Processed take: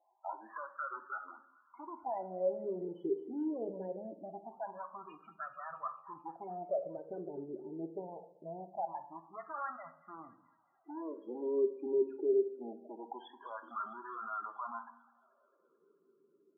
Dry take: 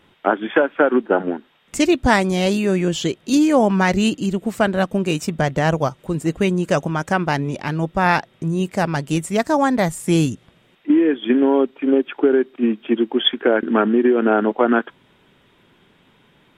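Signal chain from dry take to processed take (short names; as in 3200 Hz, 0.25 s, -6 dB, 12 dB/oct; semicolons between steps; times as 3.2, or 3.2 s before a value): LPF 3600 Hz 24 dB/oct; bell 460 Hz -4.5 dB 0.27 oct; in parallel at +2.5 dB: level quantiser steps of 21 dB; on the sum: limiter -6.5 dBFS, peak gain reduction 8 dB; 12.12–12.54 compressor 12:1, threshold -15 dBFS, peak gain reduction 6 dB; hard clip -16 dBFS, distortion -9 dB; wah 0.23 Hz 390–1300 Hz, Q 7.1; resonator 79 Hz, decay 1 s, harmonics all, mix 50%; loudest bins only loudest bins 16; thin delay 0.218 s, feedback 62%, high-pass 2200 Hz, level -14.5 dB; reverb RT60 0.60 s, pre-delay 3 ms, DRR 6 dB; gain -2.5 dB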